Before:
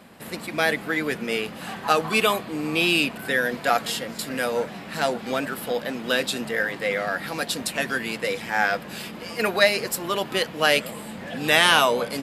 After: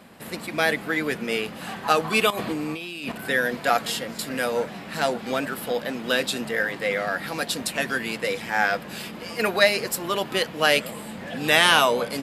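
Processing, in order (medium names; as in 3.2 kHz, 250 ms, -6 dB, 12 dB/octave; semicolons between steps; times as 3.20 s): 2.30–3.12 s: compressor with a negative ratio -31 dBFS, ratio -1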